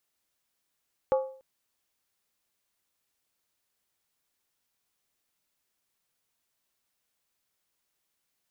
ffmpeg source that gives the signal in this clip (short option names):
-f lavfi -i "aevalsrc='0.119*pow(10,-3*t/0.48)*sin(2*PI*528*t)+0.0473*pow(10,-3*t/0.38)*sin(2*PI*841.6*t)+0.0188*pow(10,-3*t/0.328)*sin(2*PI*1127.8*t)+0.0075*pow(10,-3*t/0.317)*sin(2*PI*1212.3*t)+0.00299*pow(10,-3*t/0.295)*sin(2*PI*1400.8*t)':d=0.29:s=44100"